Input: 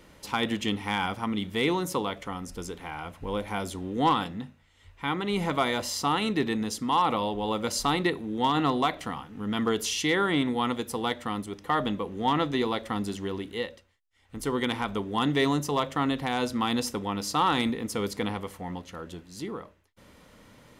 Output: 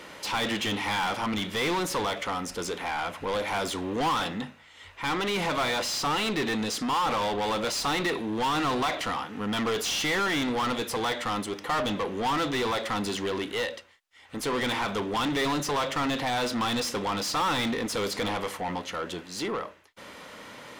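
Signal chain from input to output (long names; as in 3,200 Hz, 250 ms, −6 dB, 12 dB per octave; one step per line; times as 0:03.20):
dynamic equaliser 4,200 Hz, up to +3 dB, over −45 dBFS, Q 0.79
mid-hump overdrive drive 27 dB, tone 4,500 Hz, clips at −14 dBFS
level −6.5 dB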